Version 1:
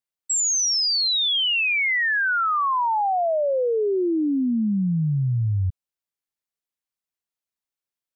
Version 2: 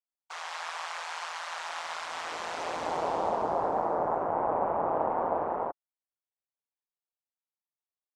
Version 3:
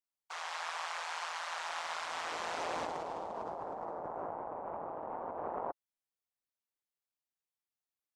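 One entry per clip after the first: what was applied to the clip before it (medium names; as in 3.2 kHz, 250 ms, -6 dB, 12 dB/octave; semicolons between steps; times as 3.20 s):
noise-vocoded speech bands 2; band-pass filter 770 Hz, Q 1.7; ring modulator 83 Hz
compressor with a negative ratio -34 dBFS, ratio -1; trim -5.5 dB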